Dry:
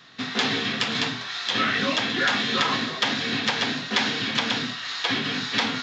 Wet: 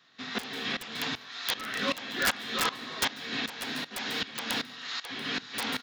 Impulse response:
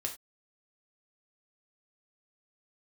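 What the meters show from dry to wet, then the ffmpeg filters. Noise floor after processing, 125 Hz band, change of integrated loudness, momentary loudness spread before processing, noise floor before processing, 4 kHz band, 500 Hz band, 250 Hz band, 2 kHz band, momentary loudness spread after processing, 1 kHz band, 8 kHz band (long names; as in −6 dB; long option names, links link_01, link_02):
−50 dBFS, −12.0 dB, −8.0 dB, 4 LU, −34 dBFS, −8.5 dB, −7.5 dB, −10.0 dB, −8.0 dB, 6 LU, −8.0 dB, −1.5 dB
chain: -filter_complex "[0:a]highpass=frequency=220:poles=1,areverse,acompressor=mode=upward:threshold=-27dB:ratio=2.5,areverse,aeval=exprs='(mod(4.73*val(0)+1,2)-1)/4.73':channel_layout=same,asplit=2[link_01][link_02];[link_02]adelay=310,highpass=300,lowpass=3400,asoftclip=type=hard:threshold=-22dB,volume=-18dB[link_03];[link_01][link_03]amix=inputs=2:normalize=0,asplit=2[link_04][link_05];[1:a]atrim=start_sample=2205,adelay=143[link_06];[link_05][link_06]afir=irnorm=-1:irlink=0,volume=-14.5dB[link_07];[link_04][link_07]amix=inputs=2:normalize=0,aeval=exprs='val(0)*pow(10,-18*if(lt(mod(-2.6*n/s,1),2*abs(-2.6)/1000),1-mod(-2.6*n/s,1)/(2*abs(-2.6)/1000),(mod(-2.6*n/s,1)-2*abs(-2.6)/1000)/(1-2*abs(-2.6)/1000))/20)':channel_layout=same,volume=-1.5dB"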